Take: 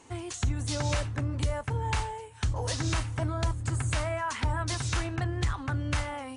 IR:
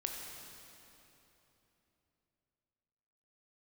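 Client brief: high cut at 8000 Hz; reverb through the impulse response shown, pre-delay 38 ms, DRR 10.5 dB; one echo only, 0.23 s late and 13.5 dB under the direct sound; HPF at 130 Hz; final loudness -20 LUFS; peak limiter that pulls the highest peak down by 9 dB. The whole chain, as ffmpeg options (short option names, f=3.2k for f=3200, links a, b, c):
-filter_complex "[0:a]highpass=130,lowpass=8k,alimiter=level_in=3dB:limit=-24dB:level=0:latency=1,volume=-3dB,aecho=1:1:230:0.211,asplit=2[a][b];[1:a]atrim=start_sample=2205,adelay=38[c];[b][c]afir=irnorm=-1:irlink=0,volume=-11.5dB[d];[a][d]amix=inputs=2:normalize=0,volume=16dB"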